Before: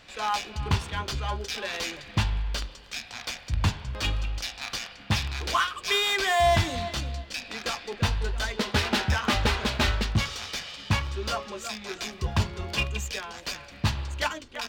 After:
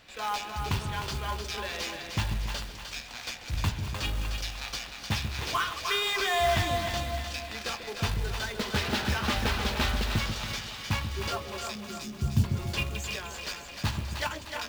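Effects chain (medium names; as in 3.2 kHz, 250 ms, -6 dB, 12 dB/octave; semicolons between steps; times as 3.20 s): chunks repeated in reverse 188 ms, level -13.5 dB; in parallel at -3 dB: one-sided clip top -27 dBFS; on the sum: short-mantissa float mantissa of 2-bit; 11.75–12.44 s: graphic EQ 125/250/500/1000/2000/4000 Hz +9/+6/-9/-11/-11/-5 dB; on a send: two-band feedback delay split 570 Hz, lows 142 ms, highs 304 ms, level -6 dB; on the sum: trim -8 dB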